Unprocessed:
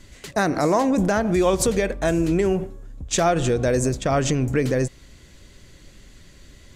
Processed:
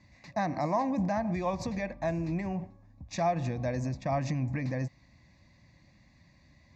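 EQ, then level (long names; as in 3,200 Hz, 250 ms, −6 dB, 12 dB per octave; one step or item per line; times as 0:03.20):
band-pass filter 100–5,500 Hz
high-shelf EQ 2,500 Hz −8.5 dB
phaser with its sweep stopped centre 2,100 Hz, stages 8
−5.0 dB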